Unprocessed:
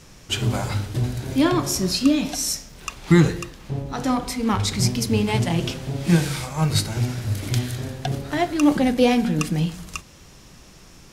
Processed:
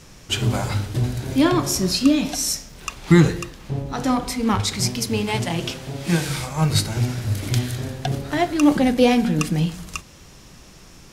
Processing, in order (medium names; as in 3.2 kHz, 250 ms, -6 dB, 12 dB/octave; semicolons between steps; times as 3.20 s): 4.61–6.29 s: bass shelf 330 Hz -6.5 dB; trim +1.5 dB